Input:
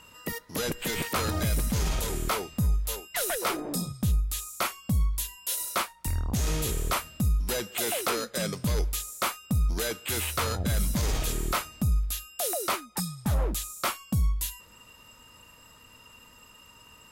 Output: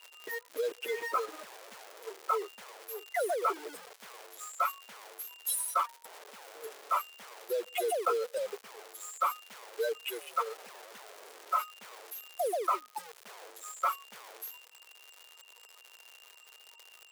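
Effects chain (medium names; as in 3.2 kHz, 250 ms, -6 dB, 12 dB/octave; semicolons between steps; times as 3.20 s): spectral contrast enhancement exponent 2.9; crackle 240 per s -38 dBFS; in parallel at -4.5 dB: bit crusher 6-bit; on the sum: Chebyshev high-pass 420 Hz, order 4; trim -4 dB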